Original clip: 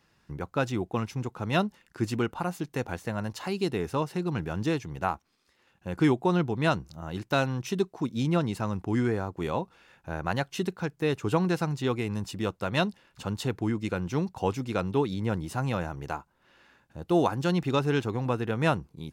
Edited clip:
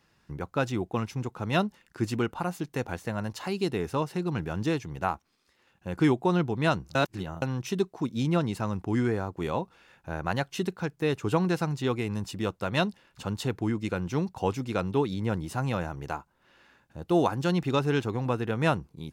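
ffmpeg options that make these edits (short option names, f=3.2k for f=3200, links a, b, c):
-filter_complex "[0:a]asplit=3[a][b][c];[a]atrim=end=6.952[d];[b]atrim=start=6.948:end=7.422,asetpts=PTS-STARTPTS,areverse[e];[c]atrim=start=7.418[f];[d][e]acrossfade=d=0.004:c1=hsin:c2=hsin[g];[g][f]acrossfade=d=0.004:c1=hsin:c2=hsin"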